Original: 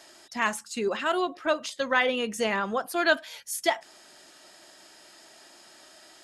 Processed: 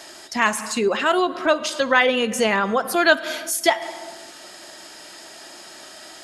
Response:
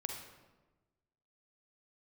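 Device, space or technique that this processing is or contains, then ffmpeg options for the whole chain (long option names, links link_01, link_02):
ducked reverb: -filter_complex "[0:a]asplit=3[link_01][link_02][link_03];[1:a]atrim=start_sample=2205[link_04];[link_02][link_04]afir=irnorm=-1:irlink=0[link_05];[link_03]apad=whole_len=275153[link_06];[link_05][link_06]sidechaincompress=threshold=-39dB:ratio=10:attack=38:release=119,volume=-0.5dB[link_07];[link_01][link_07]amix=inputs=2:normalize=0,volume=6dB"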